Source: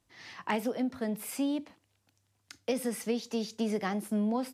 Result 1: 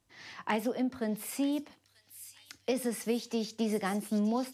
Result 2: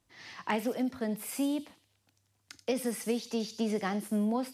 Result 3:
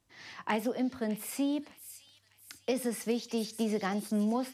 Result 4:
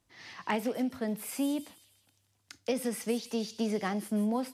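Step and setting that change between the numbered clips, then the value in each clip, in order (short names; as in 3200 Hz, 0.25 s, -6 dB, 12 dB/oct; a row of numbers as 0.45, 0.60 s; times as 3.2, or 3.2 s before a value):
thin delay, time: 935, 84, 605, 158 ms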